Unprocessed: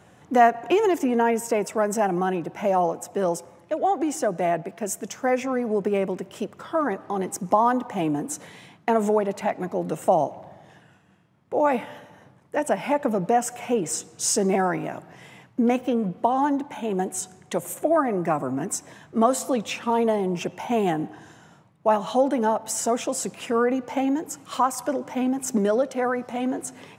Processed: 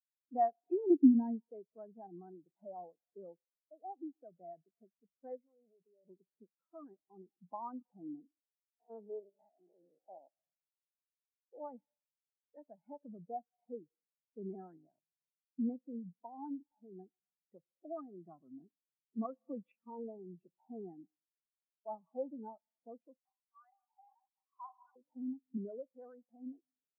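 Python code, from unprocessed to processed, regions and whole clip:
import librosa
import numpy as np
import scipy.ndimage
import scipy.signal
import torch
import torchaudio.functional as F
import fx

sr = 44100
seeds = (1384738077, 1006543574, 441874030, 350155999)

y = fx.chain(x, sr, fx.low_shelf(hz=500.0, db=11.0),
    fx.fixed_phaser(hz=760.0, stages=8), at=(0.9, 1.49))
y = fx.chain(y, sr, fx.dynamic_eq(hz=680.0, q=1.1, threshold_db=-37.0, ratio=4.0, max_db=7),
    fx.level_steps(step_db=17), at=(5.37, 6.08))
y = fx.chain(y, sr, fx.spec_steps(hold_ms=100),
    fx.highpass(hz=250.0, slope=12), at=(8.31, 10.37))
y = fx.chain(y, sr, fx.peak_eq(hz=2600.0, db=8.5, octaves=2.6),
    fx.band_squash(depth_pct=70), at=(19.25, 19.72))
y = fx.chain(y, sr, fx.cheby_ripple_highpass(hz=730.0, ripple_db=6),
    fx.peak_eq(hz=2600.0, db=-6.0, octaves=0.33),
    fx.sustainer(db_per_s=38.0), at=(23.18, 24.96))
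y = fx.dynamic_eq(y, sr, hz=660.0, q=1.3, threshold_db=-31.0, ratio=4.0, max_db=-4)
y = scipy.signal.sosfilt(scipy.signal.butter(2, 1900.0, 'lowpass', fs=sr, output='sos'), y)
y = fx.spectral_expand(y, sr, expansion=2.5)
y = y * librosa.db_to_amplitude(-8.5)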